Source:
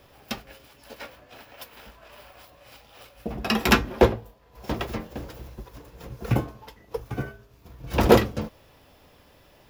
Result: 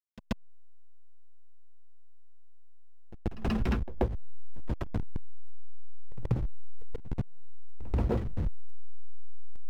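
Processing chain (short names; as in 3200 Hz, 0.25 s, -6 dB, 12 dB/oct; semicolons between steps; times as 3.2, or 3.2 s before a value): level-crossing sampler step -22.5 dBFS; RIAA curve playback; compressor 5:1, threshold -26 dBFS, peak gain reduction 20.5 dB; pre-echo 0.133 s -17.5 dB; gain -1.5 dB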